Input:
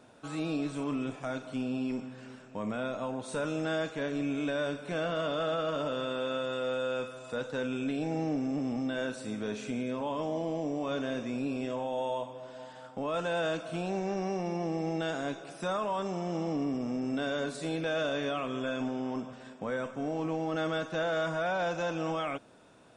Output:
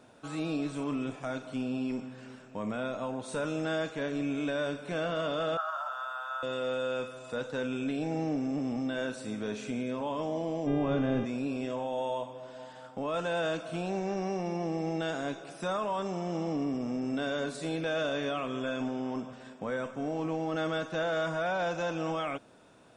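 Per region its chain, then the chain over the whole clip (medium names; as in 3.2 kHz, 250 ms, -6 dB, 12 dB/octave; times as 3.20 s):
5.57–6.43 s: elliptic high-pass 710 Hz + resonant high shelf 1.8 kHz -7.5 dB, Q 3 + word length cut 12-bit, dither none
10.66–11.24 s: RIAA curve playback + mains buzz 400 Hz, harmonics 9, -41 dBFS -7 dB/octave
whole clip: none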